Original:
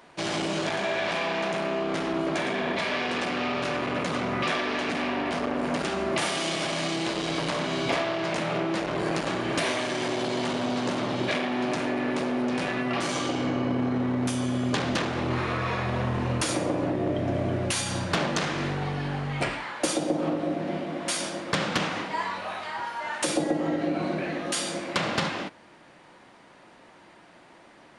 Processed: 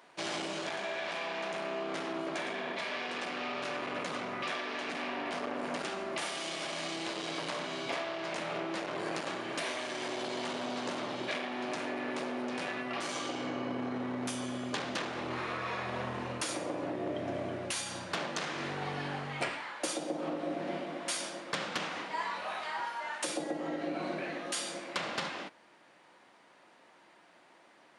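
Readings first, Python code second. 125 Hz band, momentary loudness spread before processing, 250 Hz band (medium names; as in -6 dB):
-15.0 dB, 3 LU, -11.0 dB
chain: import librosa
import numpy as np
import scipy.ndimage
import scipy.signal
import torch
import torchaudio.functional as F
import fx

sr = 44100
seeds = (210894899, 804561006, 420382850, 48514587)

y = fx.highpass(x, sr, hz=390.0, slope=6)
y = fx.rider(y, sr, range_db=10, speed_s=0.5)
y = F.gain(torch.from_numpy(y), -6.5).numpy()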